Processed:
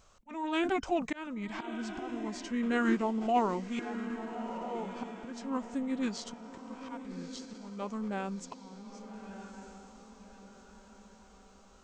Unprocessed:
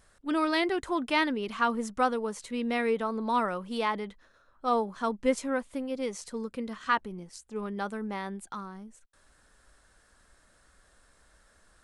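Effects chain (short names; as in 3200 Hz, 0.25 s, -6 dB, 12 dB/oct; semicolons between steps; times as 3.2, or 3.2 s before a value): auto swell 0.488 s; diffused feedback echo 1.249 s, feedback 43%, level -9.5 dB; formant shift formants -5 st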